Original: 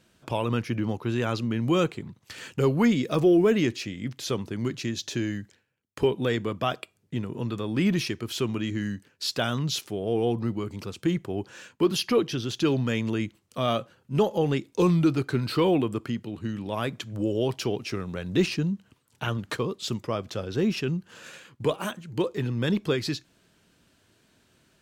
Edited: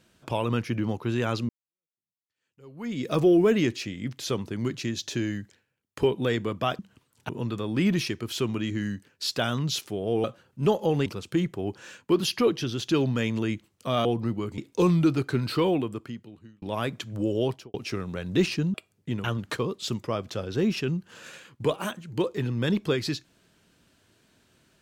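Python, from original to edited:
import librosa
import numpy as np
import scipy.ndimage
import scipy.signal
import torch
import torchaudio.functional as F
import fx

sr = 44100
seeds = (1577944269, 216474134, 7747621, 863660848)

y = fx.studio_fade_out(x, sr, start_s=17.44, length_s=0.3)
y = fx.edit(y, sr, fx.fade_in_span(start_s=1.49, length_s=1.58, curve='exp'),
    fx.swap(start_s=6.79, length_s=0.5, other_s=18.74, other_length_s=0.5),
    fx.swap(start_s=10.24, length_s=0.53, other_s=13.76, other_length_s=0.82),
    fx.fade_out_span(start_s=15.47, length_s=1.15), tone=tone)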